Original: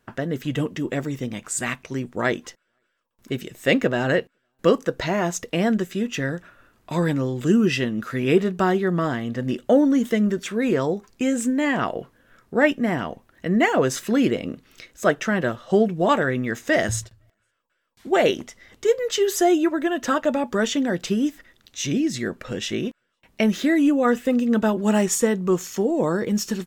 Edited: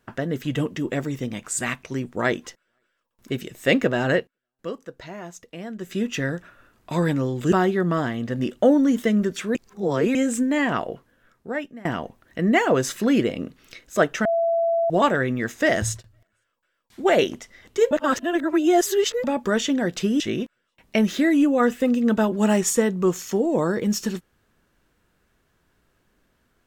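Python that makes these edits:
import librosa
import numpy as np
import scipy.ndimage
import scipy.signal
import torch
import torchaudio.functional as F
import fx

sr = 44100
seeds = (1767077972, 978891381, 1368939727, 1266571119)

y = fx.edit(x, sr, fx.fade_down_up(start_s=4.16, length_s=1.77, db=-14.0, fade_s=0.15),
    fx.cut(start_s=7.52, length_s=1.07),
    fx.reverse_span(start_s=10.62, length_s=0.6),
    fx.fade_out_to(start_s=11.73, length_s=1.19, floor_db=-22.5),
    fx.bleep(start_s=15.32, length_s=0.65, hz=670.0, db=-18.0),
    fx.reverse_span(start_s=18.98, length_s=1.33),
    fx.cut(start_s=21.27, length_s=1.38), tone=tone)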